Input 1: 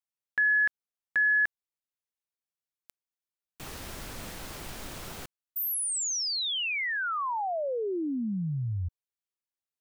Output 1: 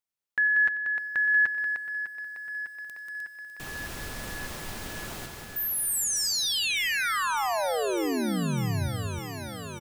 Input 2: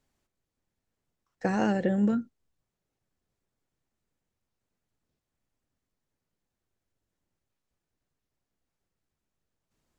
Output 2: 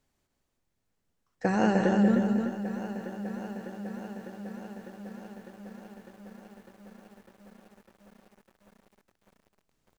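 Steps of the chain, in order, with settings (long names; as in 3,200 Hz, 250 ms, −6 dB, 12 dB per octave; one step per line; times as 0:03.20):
multi-tap delay 92/187/305 ms −16/−7/−5 dB
feedback echo at a low word length 602 ms, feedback 80%, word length 9 bits, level −12 dB
level +1 dB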